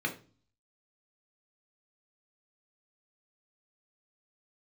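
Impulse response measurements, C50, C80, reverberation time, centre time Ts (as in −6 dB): 12.0 dB, 17.5 dB, 0.40 s, 12 ms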